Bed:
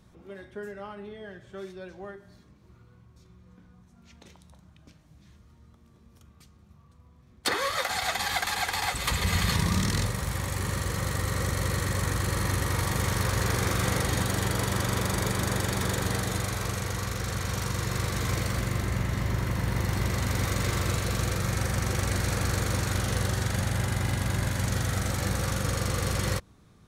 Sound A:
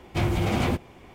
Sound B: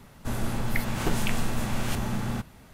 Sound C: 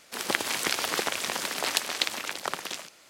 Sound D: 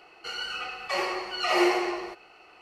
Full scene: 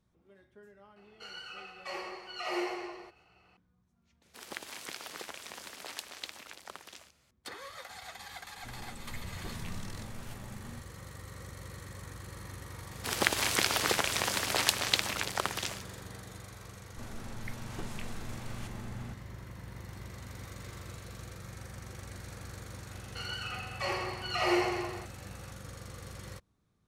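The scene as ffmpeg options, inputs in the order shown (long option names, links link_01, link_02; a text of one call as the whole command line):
ffmpeg -i bed.wav -i cue0.wav -i cue1.wav -i cue2.wav -i cue3.wav -filter_complex "[4:a]asplit=2[link_01][link_02];[3:a]asplit=2[link_03][link_04];[2:a]asplit=2[link_05][link_06];[0:a]volume=-17.5dB[link_07];[link_05]asplit=2[link_08][link_09];[link_09]adelay=10.7,afreqshift=1.8[link_10];[link_08][link_10]amix=inputs=2:normalize=1[link_11];[link_06]lowpass=11000[link_12];[link_01]atrim=end=2.61,asetpts=PTS-STARTPTS,volume=-11.5dB,afade=type=in:duration=0.004:curve=hsin,afade=type=out:start_time=2.606:duration=0.004:curve=hsin,adelay=960[link_13];[link_03]atrim=end=3.09,asetpts=PTS-STARTPTS,volume=-15dB,afade=type=in:duration=0.004:curve=hsin,afade=type=out:start_time=3.086:duration=0.004:curve=hsin,adelay=4220[link_14];[link_11]atrim=end=2.73,asetpts=PTS-STARTPTS,volume=-14.5dB,afade=type=in:duration=0.004:curve=hsin,afade=type=out:start_time=2.726:duration=0.004:curve=hsin,adelay=8380[link_15];[link_04]atrim=end=3.09,asetpts=PTS-STARTPTS,volume=-0.5dB,afade=type=in:duration=0.004:curve=hsin,afade=type=out:start_time=3.086:duration=0.004:curve=hsin,adelay=12920[link_16];[link_12]atrim=end=2.73,asetpts=PTS-STARTPTS,volume=-14.5dB,afade=type=in:duration=0.004:curve=hsin,afade=type=out:start_time=2.726:duration=0.004:curve=hsin,adelay=16720[link_17];[link_02]atrim=end=2.61,asetpts=PTS-STARTPTS,volume=-5.5dB,afade=type=in:duration=0.004:curve=hsin,afade=type=out:start_time=2.606:duration=0.004:curve=hsin,adelay=22910[link_18];[link_07][link_13][link_14][link_15][link_16][link_17][link_18]amix=inputs=7:normalize=0" out.wav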